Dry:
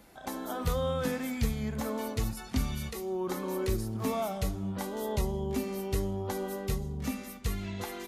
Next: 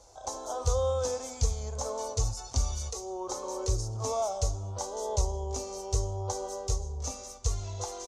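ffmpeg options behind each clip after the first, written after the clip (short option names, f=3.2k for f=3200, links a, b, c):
-af "firequalizer=gain_entry='entry(110,0);entry(160,-26);entry(480,0);entry(1000,-1);entry(1800,-19);entry(6200,11);entry(12000,-21)':delay=0.05:min_phase=1,volume=3.5dB"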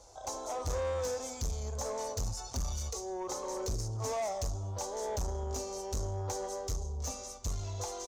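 -af "asoftclip=type=tanh:threshold=-30dB"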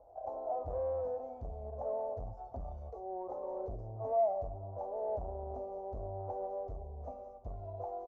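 -af "lowpass=f=680:t=q:w=5.5,volume=-8.5dB"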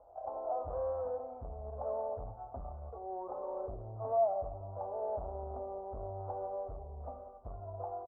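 -filter_complex "[0:a]lowpass=f=1.3k:t=q:w=3.2,asplit=2[a][b];[b]adelay=82,lowpass=f=1k:p=1,volume=-12.5dB,asplit=2[c][d];[d]adelay=82,lowpass=f=1k:p=1,volume=0.5,asplit=2[e][f];[f]adelay=82,lowpass=f=1k:p=1,volume=0.5,asplit=2[g][h];[h]adelay=82,lowpass=f=1k:p=1,volume=0.5,asplit=2[i][j];[j]adelay=82,lowpass=f=1k:p=1,volume=0.5[k];[a][c][e][g][i][k]amix=inputs=6:normalize=0,volume=-2.5dB"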